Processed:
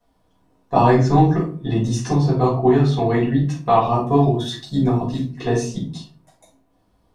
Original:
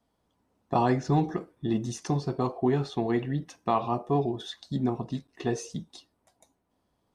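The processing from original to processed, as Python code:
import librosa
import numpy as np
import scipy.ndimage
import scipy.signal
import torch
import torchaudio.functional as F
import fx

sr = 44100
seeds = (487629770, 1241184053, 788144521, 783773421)

y = fx.high_shelf(x, sr, hz=8000.0, db=9.5, at=(3.81, 5.29))
y = fx.room_shoebox(y, sr, seeds[0], volume_m3=230.0, walls='furnished', distance_m=5.2)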